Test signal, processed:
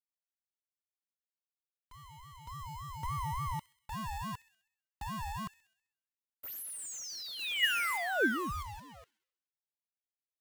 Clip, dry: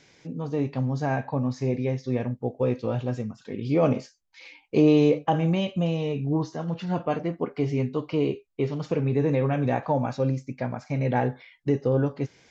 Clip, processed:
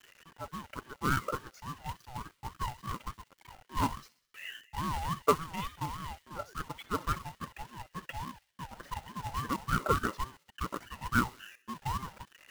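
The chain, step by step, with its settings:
spectral envelope exaggerated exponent 2
high-pass filter 610 Hz 24 dB per octave
high shelf with overshoot 3,100 Hz −6.5 dB, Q 1.5
log-companded quantiser 4 bits
hollow resonant body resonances 960/2,400 Hz, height 11 dB, ringing for 30 ms
on a send: delay with a high-pass on its return 65 ms, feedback 55%, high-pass 1,900 Hz, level −16 dB
on the sum: ring modulator whose carrier an LFO sweeps 510 Hz, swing 30%, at 3.5 Hz

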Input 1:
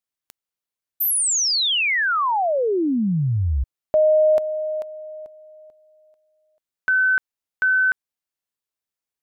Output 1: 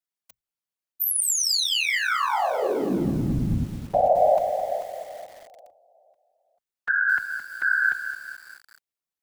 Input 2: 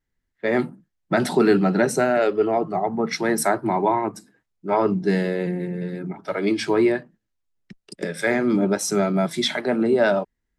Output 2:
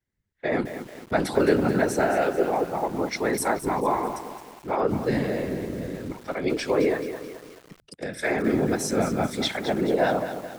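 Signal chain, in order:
frequency shifter +34 Hz
random phases in short frames
feedback echo at a low word length 216 ms, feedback 55%, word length 6 bits, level −9.5 dB
level −4 dB

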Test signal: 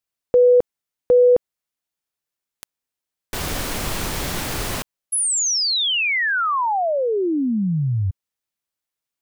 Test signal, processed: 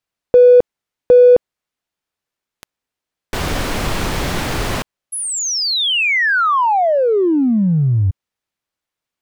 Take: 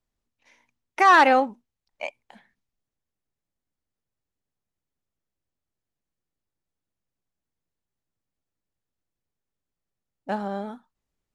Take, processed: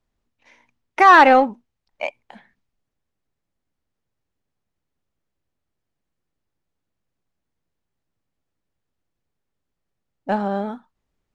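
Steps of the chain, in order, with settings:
in parallel at −11 dB: gain into a clipping stage and back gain 23.5 dB
on the sum: low-pass filter 3,400 Hz 6 dB per octave
level +5 dB

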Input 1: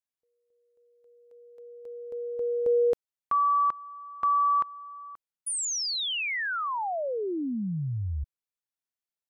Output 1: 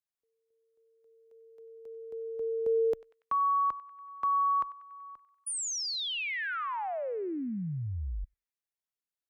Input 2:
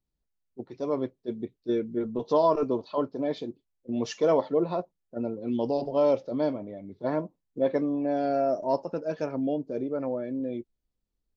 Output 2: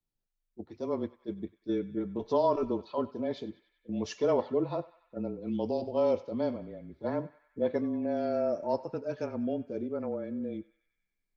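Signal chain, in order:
feedback echo with a band-pass in the loop 95 ms, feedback 72%, band-pass 2,100 Hz, level −15.5 dB
frequency shifter −25 Hz
level −4 dB

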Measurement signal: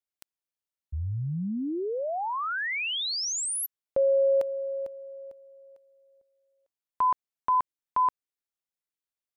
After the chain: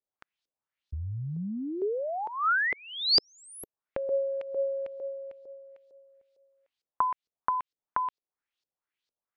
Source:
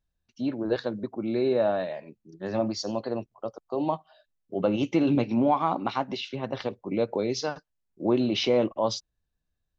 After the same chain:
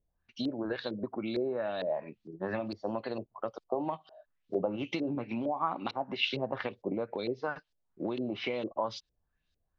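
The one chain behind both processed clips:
downward compressor 12 to 1, threshold −32 dBFS
high-shelf EQ 2,100 Hz +10 dB
auto-filter low-pass saw up 2.2 Hz 430–5,000 Hz

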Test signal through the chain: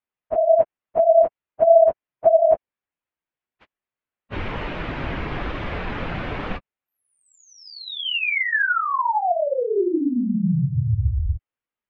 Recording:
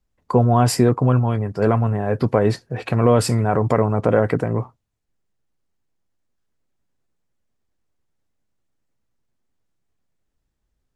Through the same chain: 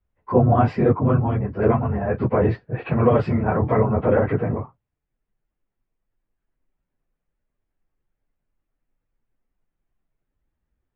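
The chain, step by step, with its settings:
random phases in long frames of 50 ms
low-pass filter 2,700 Hz 24 dB per octave
level −1.5 dB

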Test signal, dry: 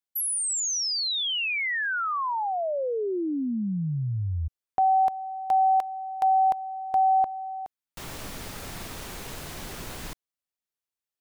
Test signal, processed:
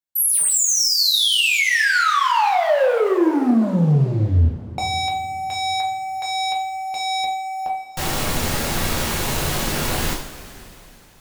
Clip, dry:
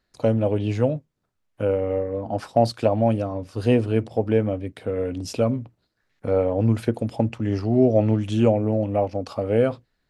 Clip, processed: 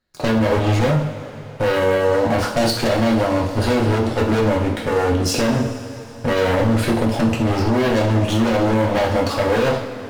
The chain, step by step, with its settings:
leveller curve on the samples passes 3
in parallel at −12 dB: sine wavefolder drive 12 dB, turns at −5 dBFS
on the sum: coupled-rooms reverb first 0.46 s, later 3.6 s, from −18 dB, DRR −3 dB
boost into a limiter +0.5 dB
level −8 dB

